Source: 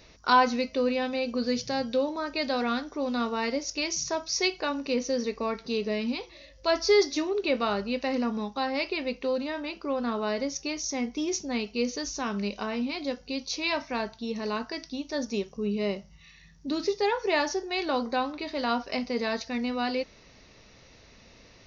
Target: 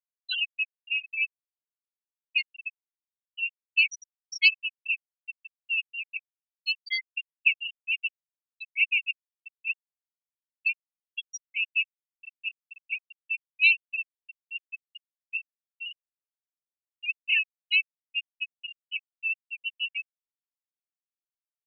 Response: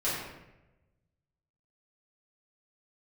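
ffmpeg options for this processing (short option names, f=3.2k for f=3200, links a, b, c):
-af "acrusher=bits=8:dc=4:mix=0:aa=0.000001,highpass=f=2.7k:t=q:w=7,afftfilt=real='re*gte(hypot(re,im),0.282)':imag='im*gte(hypot(re,im),0.282)':win_size=1024:overlap=0.75"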